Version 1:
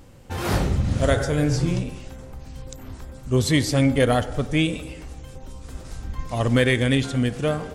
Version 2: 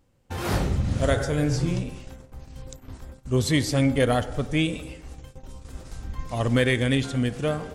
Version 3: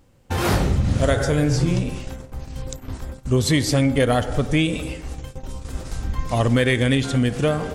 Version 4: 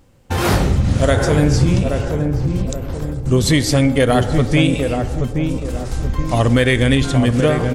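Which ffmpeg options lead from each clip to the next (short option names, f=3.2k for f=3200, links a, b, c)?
-af "agate=range=-15dB:threshold=-37dB:ratio=16:detection=peak,volume=-2.5dB"
-af "acompressor=threshold=-26dB:ratio=2.5,volume=9dB"
-filter_complex "[0:a]asplit=2[a][b];[b]adelay=827,lowpass=f=810:p=1,volume=-4dB,asplit=2[c][d];[d]adelay=827,lowpass=f=810:p=1,volume=0.46,asplit=2[e][f];[f]adelay=827,lowpass=f=810:p=1,volume=0.46,asplit=2[g][h];[h]adelay=827,lowpass=f=810:p=1,volume=0.46,asplit=2[i][j];[j]adelay=827,lowpass=f=810:p=1,volume=0.46,asplit=2[k][l];[l]adelay=827,lowpass=f=810:p=1,volume=0.46[m];[a][c][e][g][i][k][m]amix=inputs=7:normalize=0,volume=4dB"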